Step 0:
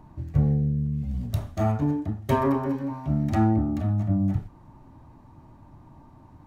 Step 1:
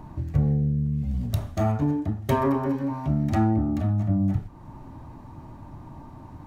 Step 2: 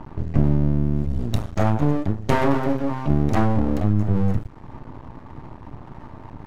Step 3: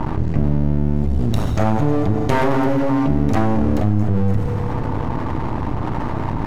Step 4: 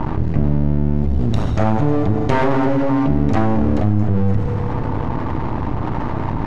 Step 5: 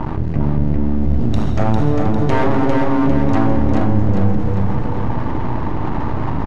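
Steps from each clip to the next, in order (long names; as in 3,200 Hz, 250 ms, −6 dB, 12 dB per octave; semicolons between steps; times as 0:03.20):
downward compressor 1.5 to 1, threshold −40 dBFS, peak gain reduction 8.5 dB; level +7.5 dB
low-pass that shuts in the quiet parts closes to 2,800 Hz, open at −21 dBFS; half-wave rectification; level +7.5 dB
on a send at −9 dB: convolution reverb RT60 2.9 s, pre-delay 9 ms; on the sum: envelope flattener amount 70%; level −1 dB
high-frequency loss of the air 73 metres; level +1 dB
repeating echo 401 ms, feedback 47%, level −4 dB; level −1 dB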